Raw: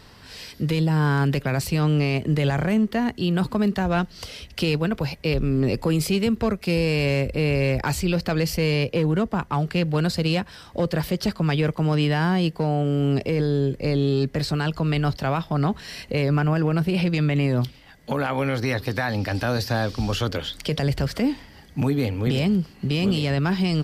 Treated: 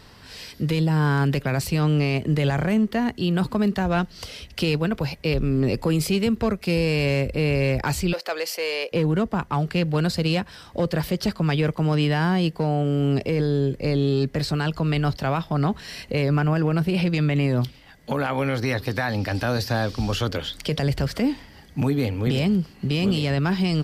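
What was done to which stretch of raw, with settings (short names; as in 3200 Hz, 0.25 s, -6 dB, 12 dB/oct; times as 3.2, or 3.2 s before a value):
8.13–8.92 HPF 450 Hz 24 dB/oct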